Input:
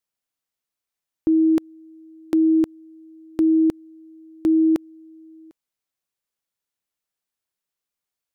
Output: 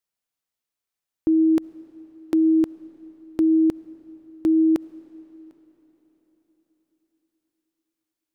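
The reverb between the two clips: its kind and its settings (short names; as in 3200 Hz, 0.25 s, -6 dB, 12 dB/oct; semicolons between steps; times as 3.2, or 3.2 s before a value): digital reverb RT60 4.6 s, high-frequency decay 0.85×, pre-delay 25 ms, DRR 18 dB; gain -1 dB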